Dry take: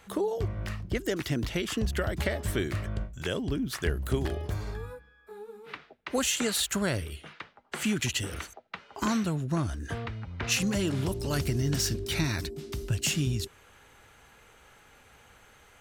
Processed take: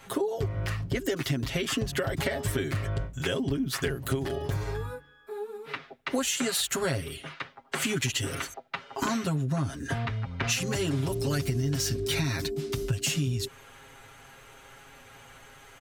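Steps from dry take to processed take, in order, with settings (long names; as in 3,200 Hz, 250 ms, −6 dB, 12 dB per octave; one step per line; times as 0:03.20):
comb filter 7.4 ms, depth 97%
downward compressor, threshold −28 dBFS, peak gain reduction 10.5 dB
level +3 dB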